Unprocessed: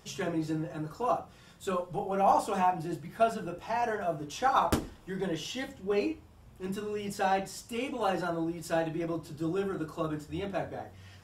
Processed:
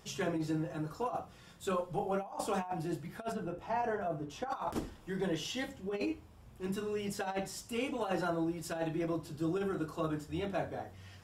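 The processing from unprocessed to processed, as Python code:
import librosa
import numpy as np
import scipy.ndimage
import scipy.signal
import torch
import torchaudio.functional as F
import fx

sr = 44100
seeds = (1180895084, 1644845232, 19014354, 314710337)

y = fx.high_shelf(x, sr, hz=2100.0, db=-10.0, at=(3.32, 4.5))
y = fx.over_compress(y, sr, threshold_db=-30.0, ratio=-0.5)
y = y * 10.0 ** (-3.0 / 20.0)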